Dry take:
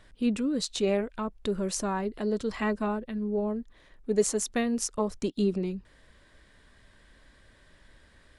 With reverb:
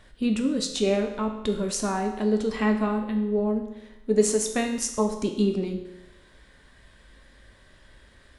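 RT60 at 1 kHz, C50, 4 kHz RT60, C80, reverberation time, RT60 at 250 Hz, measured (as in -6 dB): 0.90 s, 7.5 dB, 0.85 s, 9.5 dB, 0.90 s, 0.95 s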